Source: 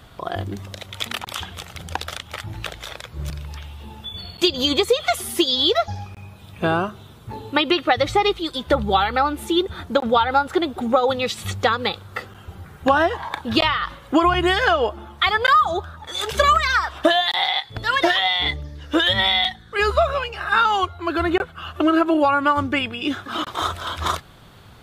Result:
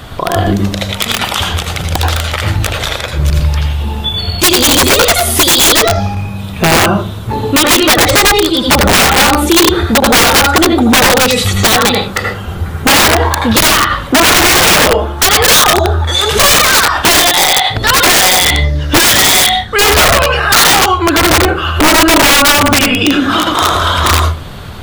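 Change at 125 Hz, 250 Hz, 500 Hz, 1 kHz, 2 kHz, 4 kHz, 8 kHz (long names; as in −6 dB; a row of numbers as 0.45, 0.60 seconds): +17.0, +11.0, +9.0, +9.0, +13.0, +13.0, +27.5 decibels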